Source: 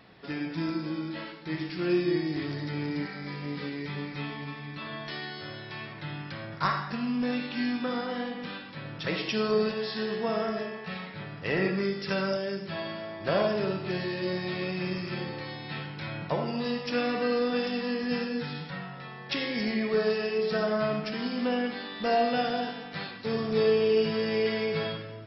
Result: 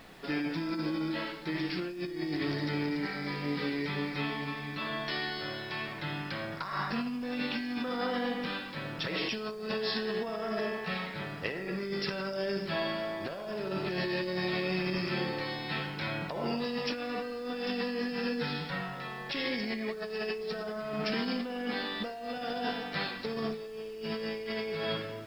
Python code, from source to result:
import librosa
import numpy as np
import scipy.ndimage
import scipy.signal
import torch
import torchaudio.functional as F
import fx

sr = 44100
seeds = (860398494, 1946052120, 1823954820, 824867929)

y = fx.peak_eq(x, sr, hz=110.0, db=-7.5, octaves=1.1)
y = fx.over_compress(y, sr, threshold_db=-34.0, ratio=-1.0)
y = fx.dmg_noise_colour(y, sr, seeds[0], colour='pink', level_db=-61.0)